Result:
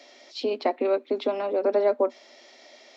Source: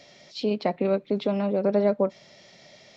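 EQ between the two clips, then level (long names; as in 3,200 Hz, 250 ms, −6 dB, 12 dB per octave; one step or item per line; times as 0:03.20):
Chebyshev high-pass with heavy ripple 240 Hz, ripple 3 dB
+3.0 dB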